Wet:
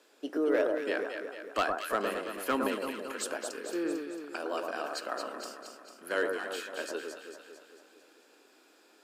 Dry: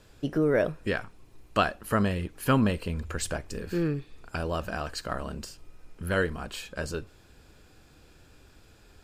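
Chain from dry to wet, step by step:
Butterworth high-pass 280 Hz 36 dB per octave
hard clipping −17 dBFS, distortion −18 dB
on a send: delay that swaps between a low-pass and a high-pass 112 ms, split 1,400 Hz, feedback 74%, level −3 dB
on the sum: level −3.5 dB

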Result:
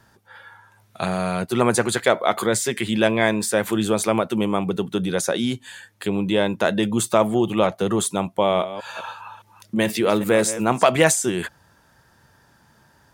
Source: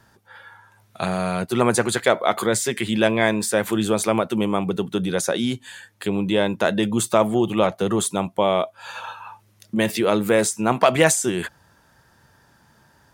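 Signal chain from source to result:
0:08.19–0:10.83: delay that plays each chunk backwards 205 ms, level −13 dB

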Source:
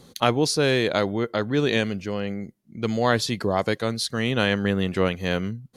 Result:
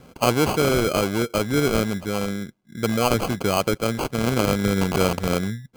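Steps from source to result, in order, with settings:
0:04.81–0:05.28: spike at every zero crossing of −16 dBFS
in parallel at −2 dB: brickwall limiter −14.5 dBFS, peak gain reduction 9 dB
on the sum: decimation without filtering 24×
level −2.5 dB

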